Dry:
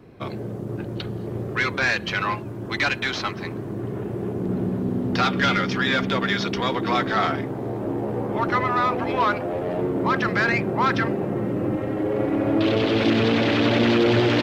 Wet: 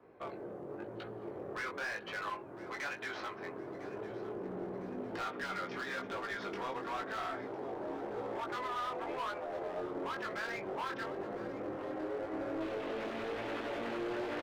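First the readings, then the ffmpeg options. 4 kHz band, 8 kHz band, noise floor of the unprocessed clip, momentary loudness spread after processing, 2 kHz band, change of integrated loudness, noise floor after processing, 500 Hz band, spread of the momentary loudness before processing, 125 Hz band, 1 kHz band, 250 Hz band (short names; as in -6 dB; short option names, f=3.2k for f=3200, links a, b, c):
-20.5 dB, n/a, -33 dBFS, 6 LU, -16.5 dB, -17.0 dB, -47 dBFS, -14.5 dB, 11 LU, -26.0 dB, -14.5 dB, -20.0 dB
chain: -filter_complex "[0:a]acrossover=split=370 2000:gain=0.126 1 0.158[a][b][c];[a][b][c]amix=inputs=3:normalize=0,acompressor=threshold=-31dB:ratio=2,asoftclip=type=hard:threshold=-29.5dB,flanger=delay=18:depth=4.9:speed=0.96,aecho=1:1:1005|2010|3015|4020:0.15|0.0658|0.029|0.0127,volume=-3dB"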